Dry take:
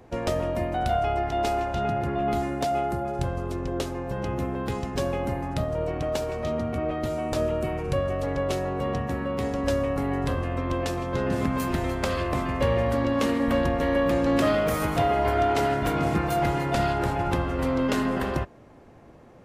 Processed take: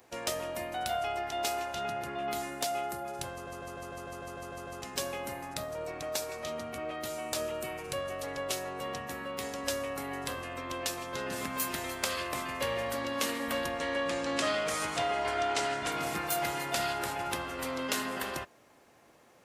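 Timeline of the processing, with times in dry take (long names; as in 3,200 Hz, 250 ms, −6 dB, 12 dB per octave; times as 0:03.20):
0:03.32: stutter in place 0.15 s, 10 plays
0:05.53–0:06.41: notch filter 3,000 Hz, Q 8.3
0:13.78–0:15.92: low-pass filter 8,600 Hz 24 dB per octave
whole clip: spectral tilt +4 dB per octave; level −6 dB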